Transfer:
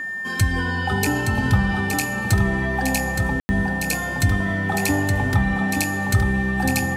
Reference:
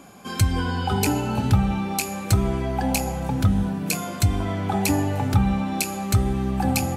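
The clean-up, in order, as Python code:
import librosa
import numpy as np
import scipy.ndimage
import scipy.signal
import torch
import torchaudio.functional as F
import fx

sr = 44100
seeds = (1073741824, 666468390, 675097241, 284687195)

y = fx.notch(x, sr, hz=1800.0, q=30.0)
y = fx.fix_ambience(y, sr, seeds[0], print_start_s=0.0, print_end_s=0.5, start_s=3.4, end_s=3.49)
y = fx.fix_echo_inverse(y, sr, delay_ms=869, level_db=-5.5)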